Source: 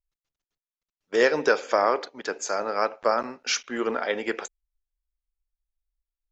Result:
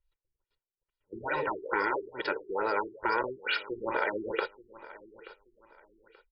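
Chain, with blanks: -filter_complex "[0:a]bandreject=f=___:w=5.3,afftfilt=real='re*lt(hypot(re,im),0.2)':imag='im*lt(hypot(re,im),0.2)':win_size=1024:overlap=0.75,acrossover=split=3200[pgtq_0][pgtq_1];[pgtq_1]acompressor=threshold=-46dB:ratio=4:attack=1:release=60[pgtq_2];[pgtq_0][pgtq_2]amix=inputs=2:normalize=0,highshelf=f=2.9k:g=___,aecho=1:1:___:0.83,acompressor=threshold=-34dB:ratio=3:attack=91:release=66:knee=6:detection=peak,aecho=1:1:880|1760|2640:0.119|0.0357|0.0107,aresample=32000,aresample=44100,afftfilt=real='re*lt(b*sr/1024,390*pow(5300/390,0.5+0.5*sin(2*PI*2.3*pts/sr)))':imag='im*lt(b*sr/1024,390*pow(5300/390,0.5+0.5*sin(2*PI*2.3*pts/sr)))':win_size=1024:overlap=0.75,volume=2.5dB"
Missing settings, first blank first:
160, 2.5, 2.1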